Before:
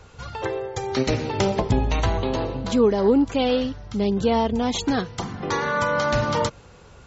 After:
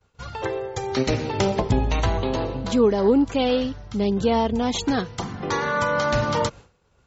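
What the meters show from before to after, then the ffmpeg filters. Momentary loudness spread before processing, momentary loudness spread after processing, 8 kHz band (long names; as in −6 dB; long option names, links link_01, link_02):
9 LU, 9 LU, can't be measured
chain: -af "agate=range=-33dB:threshold=-36dB:ratio=3:detection=peak"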